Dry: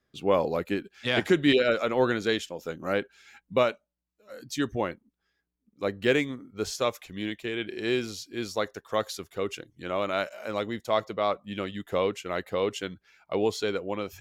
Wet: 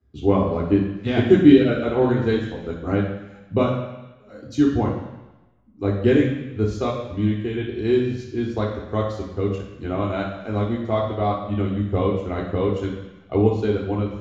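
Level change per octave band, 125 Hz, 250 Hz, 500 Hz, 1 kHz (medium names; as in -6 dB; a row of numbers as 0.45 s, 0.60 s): +15.5 dB, +11.5 dB, +5.0 dB, +3.0 dB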